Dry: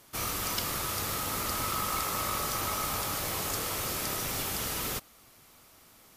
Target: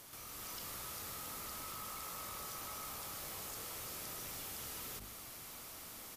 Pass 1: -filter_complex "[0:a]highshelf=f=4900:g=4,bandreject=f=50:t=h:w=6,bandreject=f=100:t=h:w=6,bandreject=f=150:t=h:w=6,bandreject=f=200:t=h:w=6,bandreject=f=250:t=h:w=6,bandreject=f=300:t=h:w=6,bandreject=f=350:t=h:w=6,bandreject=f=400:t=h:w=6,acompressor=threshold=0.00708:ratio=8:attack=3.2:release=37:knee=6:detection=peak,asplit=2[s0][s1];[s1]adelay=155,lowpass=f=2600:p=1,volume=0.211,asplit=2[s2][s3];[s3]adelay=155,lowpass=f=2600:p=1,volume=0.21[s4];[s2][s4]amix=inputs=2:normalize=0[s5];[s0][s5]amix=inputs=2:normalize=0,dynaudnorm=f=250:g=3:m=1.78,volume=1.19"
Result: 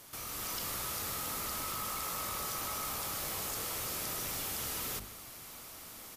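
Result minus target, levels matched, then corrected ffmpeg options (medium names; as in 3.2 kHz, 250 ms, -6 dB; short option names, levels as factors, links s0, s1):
compression: peak gain reduction -8 dB
-filter_complex "[0:a]highshelf=f=4900:g=4,bandreject=f=50:t=h:w=6,bandreject=f=100:t=h:w=6,bandreject=f=150:t=h:w=6,bandreject=f=200:t=h:w=6,bandreject=f=250:t=h:w=6,bandreject=f=300:t=h:w=6,bandreject=f=350:t=h:w=6,bandreject=f=400:t=h:w=6,acompressor=threshold=0.00251:ratio=8:attack=3.2:release=37:knee=6:detection=peak,asplit=2[s0][s1];[s1]adelay=155,lowpass=f=2600:p=1,volume=0.211,asplit=2[s2][s3];[s3]adelay=155,lowpass=f=2600:p=1,volume=0.21[s4];[s2][s4]amix=inputs=2:normalize=0[s5];[s0][s5]amix=inputs=2:normalize=0,dynaudnorm=f=250:g=3:m=1.78,volume=1.19"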